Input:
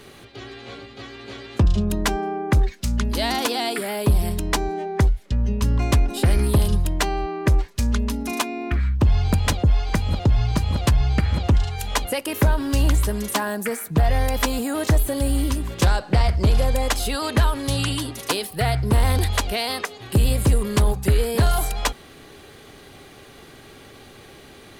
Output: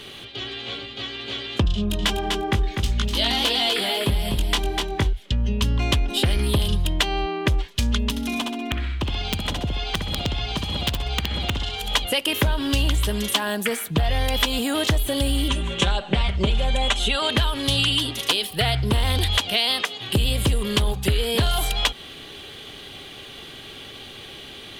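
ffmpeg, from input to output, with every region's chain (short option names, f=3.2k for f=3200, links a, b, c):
-filter_complex "[0:a]asettb=1/sr,asplit=3[a][b][c];[a]atrim=end=1.744[d];[b]atrim=start=1.74:end=5.13,asetpts=PTS-STARTPTS,afade=t=in:d=0.004:c=qsin,afade=t=out:st=3.386:d=0.004:c=qsin,flanger=delay=18.5:depth=3.1:speed=1.6,aecho=1:1:247|494|741:0.501|0.0902|0.0162,atrim=end_sample=149499[e];[c]atrim=start=5.126[f];[d][e]acrossfade=d=0.004:c1=hsin:c2=qsin[g];[g][f]acrossfade=d=0.004:c1=qsin:c2=hsin,asettb=1/sr,asplit=3[h][i][j];[h]atrim=end=8.104[k];[i]atrim=start=8.1:end=11.95,asetpts=PTS-STARTPTS,afade=t=in:d=0.004:c=qsin,afade=t=out:st=3.846:d=0.004:c=qsin,aecho=1:1:64|128|192|256:0.631|0.208|0.0687|0.0227,atrim=end_sample=169785,acrossover=split=240|970[l][m][n];[l]acompressor=threshold=-28dB:ratio=4[o];[m]acompressor=threshold=-33dB:ratio=4[p];[n]acompressor=threshold=-38dB:ratio=4[q];[o][p][q]amix=inputs=3:normalize=0,aeval=exprs='(mod(7.5*val(0)+1,2)-1)/7.5':c=same[r];[j]atrim=start=11.946[s];[k][r]acrossfade=d=0.004:c1=hsin:c2=qsin[t];[t][s]acrossfade=d=0.004:c1=qsin:c2=hsin,asettb=1/sr,asplit=3[u][v][w];[u]atrim=end=15.484[x];[v]atrim=start=15.48:end=17.3,asetpts=PTS-STARTPTS,afade=t=in:d=0.004:c=qsin,afade=t=out:st=1.816:d=0.004:c=qsin,lowpass=f=8.6k:w=0.5412,lowpass=f=8.6k:w=1.3066,equalizer=f=4.9k:w=3.9:g=-12.5,aecho=1:1:5.1:0.63,atrim=end_sample=80262[y];[w]atrim=start=17.296[z];[x][y]acrossfade=d=0.004:c1=hsin:c2=qsin[aa];[aa][z]acrossfade=d=0.004:c1=qsin:c2=hsin,asettb=1/sr,asplit=3[ab][ac][ad];[ab]atrim=end=19.384[ae];[ac]atrim=start=19.38:end=20.09,asetpts=PTS-STARTPTS,afade=t=in:d=0.004:c=qsin,afade=t=out:st=0.706:d=0.004:c=qsin,highpass=f=100:w=0.5412,highpass=f=100:w=1.3066,bandreject=f=400:w=9.3[af];[ad]atrim=start=20.086[ag];[ae][af]acrossfade=d=0.004:c1=hsin:c2=qsin[ah];[ah][ag]acrossfade=d=0.004:c1=qsin:c2=hsin,equalizer=f=3.2k:t=o:w=0.69:g=14.5,acompressor=threshold=-18dB:ratio=6,volume=1dB"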